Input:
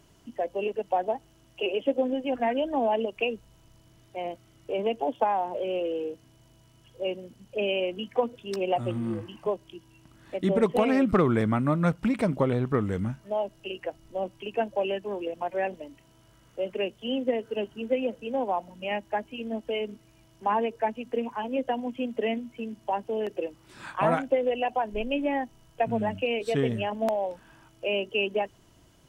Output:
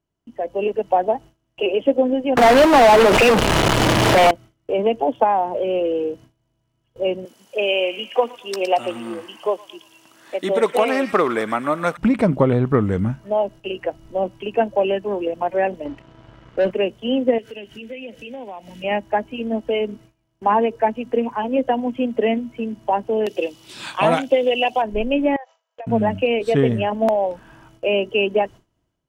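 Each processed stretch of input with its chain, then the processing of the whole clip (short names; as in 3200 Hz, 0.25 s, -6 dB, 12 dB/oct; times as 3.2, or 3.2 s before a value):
2.37–4.31 delta modulation 64 kbps, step -24.5 dBFS + overdrive pedal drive 29 dB, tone 3800 Hz, clips at -13 dBFS
7.25–11.97 HPF 440 Hz + high shelf 3700 Hz +10.5 dB + thin delay 0.114 s, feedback 42%, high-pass 1700 Hz, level -8 dB
15.85–16.71 LPF 3300 Hz + sample leveller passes 2
17.38–18.84 resonant high shelf 1600 Hz +10 dB, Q 1.5 + compressor 3:1, threshold -44 dBFS
23.26–24.82 HPF 190 Hz 6 dB/oct + resonant high shelf 2300 Hz +11 dB, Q 1.5
25.36–25.87 brick-wall FIR band-pass 460–7600 Hz + compressor 8:1, threshold -40 dBFS
whole clip: gate with hold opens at -46 dBFS; high shelf 2900 Hz -8 dB; AGC gain up to 9.5 dB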